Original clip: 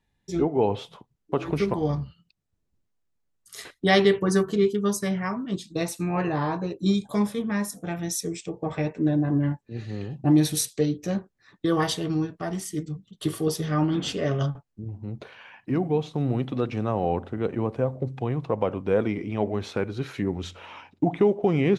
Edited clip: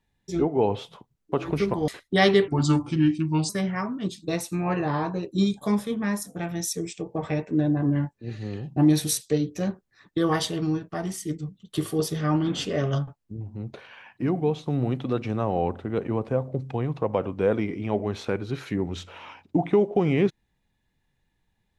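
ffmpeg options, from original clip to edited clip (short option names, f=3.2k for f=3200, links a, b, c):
-filter_complex "[0:a]asplit=4[a][b][c][d];[a]atrim=end=1.882[e];[b]atrim=start=3.588:end=4.194[f];[c]atrim=start=4.19:end=4.97,asetpts=PTS-STARTPTS,asetrate=33957,aresample=44100[g];[d]atrim=start=4.966[h];[e][f]acrossfade=d=0.004:c1=hsin:c2=hsin[i];[i][g]acrossfade=d=0.004:c1=hsin:c2=hsin[j];[j][h]acrossfade=d=0.004:c1=hsin:c2=hsin"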